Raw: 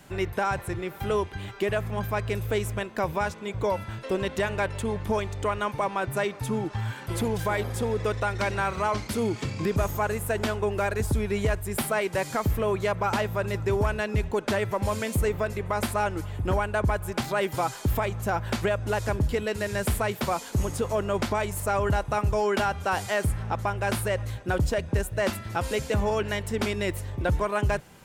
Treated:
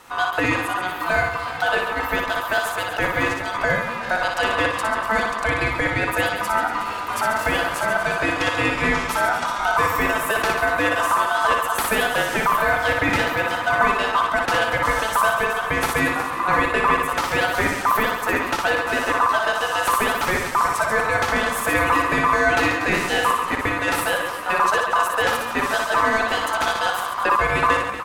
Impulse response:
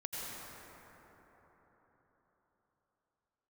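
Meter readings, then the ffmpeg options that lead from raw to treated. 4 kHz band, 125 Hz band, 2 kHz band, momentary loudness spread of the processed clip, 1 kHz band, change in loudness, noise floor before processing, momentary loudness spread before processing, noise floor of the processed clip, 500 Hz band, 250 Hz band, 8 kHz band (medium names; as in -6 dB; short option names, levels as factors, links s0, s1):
+10.5 dB, -5.0 dB, +13.5 dB, 4 LU, +10.5 dB, +7.5 dB, -42 dBFS, 4 LU, -28 dBFS, +3.0 dB, +3.0 dB, +6.5 dB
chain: -filter_complex "[0:a]asplit=2[s0][s1];[s1]aecho=0:1:60|138|239.4|371.2|542.6:0.631|0.398|0.251|0.158|0.1[s2];[s0][s2]amix=inputs=2:normalize=0,aeval=exprs='val(0)*sin(2*PI*1100*n/s)':c=same,asplit=2[s3][s4];[s4]asplit=5[s5][s6][s7][s8][s9];[s5]adelay=366,afreqshift=65,volume=0.168[s10];[s6]adelay=732,afreqshift=130,volume=0.0841[s11];[s7]adelay=1098,afreqshift=195,volume=0.0422[s12];[s8]adelay=1464,afreqshift=260,volume=0.0209[s13];[s9]adelay=1830,afreqshift=325,volume=0.0105[s14];[s10][s11][s12][s13][s14]amix=inputs=5:normalize=0[s15];[s3][s15]amix=inputs=2:normalize=0,volume=2.24"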